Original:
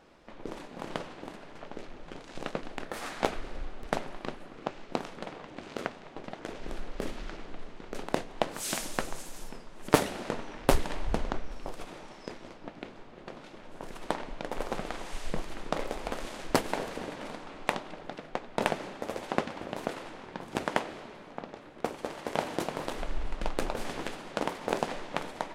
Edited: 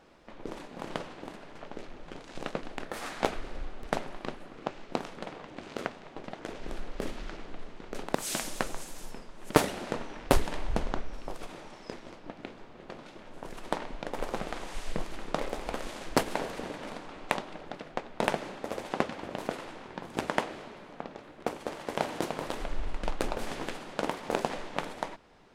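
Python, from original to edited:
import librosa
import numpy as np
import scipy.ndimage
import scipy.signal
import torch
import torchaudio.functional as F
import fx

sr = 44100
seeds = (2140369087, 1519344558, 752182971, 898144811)

y = fx.edit(x, sr, fx.cut(start_s=8.15, length_s=0.38), tone=tone)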